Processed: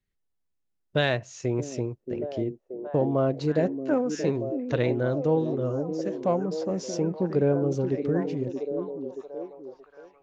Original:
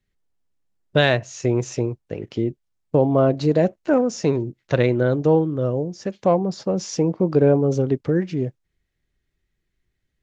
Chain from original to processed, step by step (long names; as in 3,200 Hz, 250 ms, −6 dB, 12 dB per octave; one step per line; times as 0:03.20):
echo through a band-pass that steps 628 ms, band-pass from 290 Hz, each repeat 0.7 octaves, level −4 dB
level −7 dB